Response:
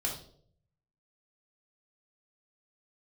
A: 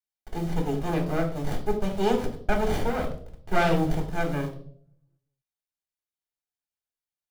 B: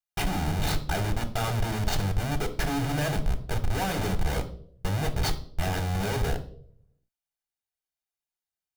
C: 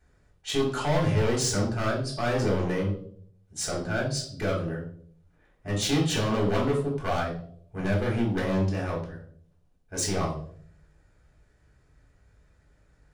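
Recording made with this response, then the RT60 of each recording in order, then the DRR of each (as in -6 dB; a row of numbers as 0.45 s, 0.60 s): C; no single decay rate, no single decay rate, no single decay rate; 1.5 dB, 7.5 dB, -2.5 dB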